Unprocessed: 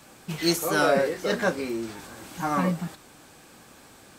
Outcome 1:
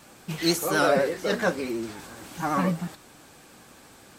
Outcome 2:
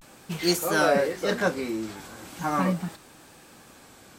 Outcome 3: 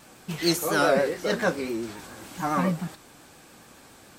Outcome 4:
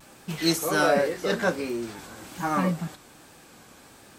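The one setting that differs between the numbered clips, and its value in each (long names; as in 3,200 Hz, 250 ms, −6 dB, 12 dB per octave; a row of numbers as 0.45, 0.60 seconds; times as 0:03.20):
pitch vibrato, speed: 12, 0.4, 7.2, 1.3 Hertz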